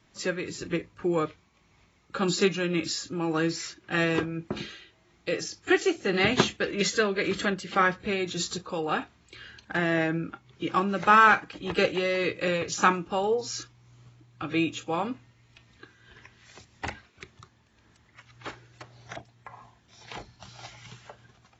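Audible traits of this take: tremolo triangle 1.8 Hz, depth 45%; AAC

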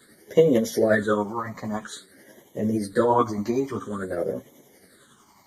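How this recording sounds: phasing stages 8, 0.5 Hz, lowest notch 450–1400 Hz; tremolo triangle 11 Hz, depth 45%; a shimmering, thickened sound

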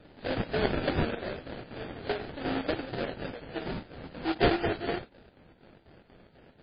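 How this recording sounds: aliases and images of a low sample rate 1.1 kHz, jitter 20%; chopped level 4.1 Hz, depth 60%, duty 70%; MP3

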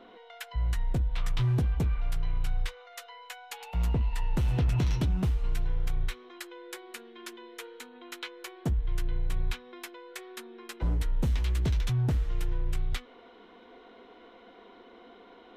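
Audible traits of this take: noise floor -54 dBFS; spectral tilt -6.0 dB/octave

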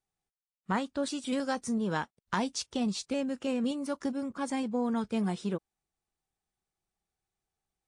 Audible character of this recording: noise floor -95 dBFS; spectral tilt -5.0 dB/octave

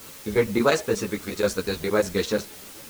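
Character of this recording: chopped level 8.4 Hz, duty 85%; a quantiser's noise floor 8-bit, dither triangular; a shimmering, thickened sound

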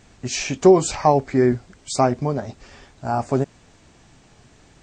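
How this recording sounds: noise floor -53 dBFS; spectral tilt -5.5 dB/octave

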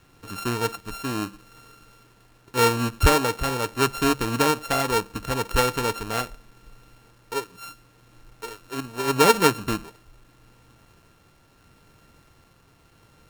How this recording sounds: a buzz of ramps at a fixed pitch in blocks of 32 samples; tremolo triangle 0.77 Hz, depth 35%; a quantiser's noise floor 10-bit, dither none; AAC

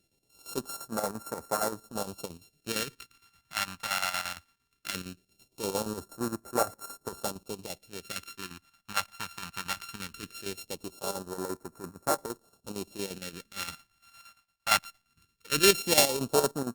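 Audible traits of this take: a buzz of ramps at a fixed pitch in blocks of 32 samples; phasing stages 2, 0.19 Hz, lowest notch 400–2800 Hz; chopped level 8.7 Hz, depth 60%, duty 65%; Opus

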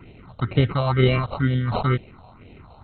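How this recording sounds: aliases and images of a low sample rate 1.7 kHz, jitter 0%; phasing stages 4, 2.1 Hz, lowest notch 320–1200 Hz; MP2

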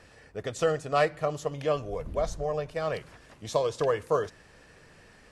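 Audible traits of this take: noise floor -56 dBFS; spectral tilt -5.0 dB/octave

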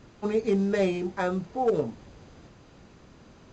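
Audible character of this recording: µ-law

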